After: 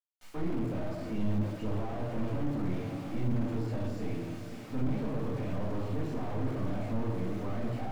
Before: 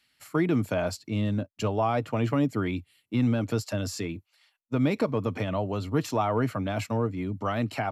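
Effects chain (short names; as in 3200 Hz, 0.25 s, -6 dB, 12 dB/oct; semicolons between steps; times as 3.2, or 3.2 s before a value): half-wave gain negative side -12 dB; low shelf 63 Hz -9.5 dB; on a send: diffused feedback echo 0.536 s, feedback 58%, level -15.5 dB; on the sum: bit-crush 8-bit; limiter -21.5 dBFS, peak gain reduction 7 dB; shoebox room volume 310 m³, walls mixed, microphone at 2 m; slew limiter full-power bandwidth 16 Hz; gain -5.5 dB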